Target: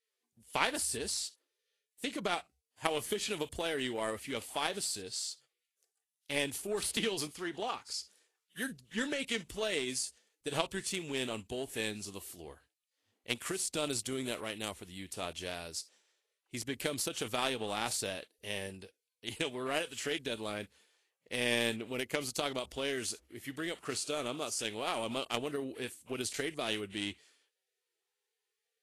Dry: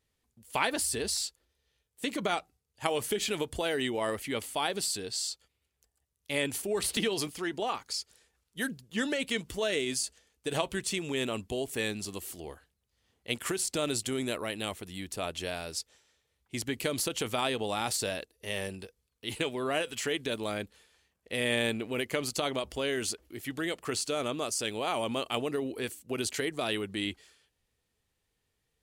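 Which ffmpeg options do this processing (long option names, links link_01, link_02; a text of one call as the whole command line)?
ffmpeg -i in.wav -af "aeval=exprs='0.335*(cos(1*acos(clip(val(0)/0.335,-1,1)))-cos(1*PI/2))+0.0237*(cos(7*acos(clip(val(0)/0.335,-1,1)))-cos(7*PI/2))':channel_layout=same" -ar 32000 -c:a libvorbis -b:a 32k out.ogg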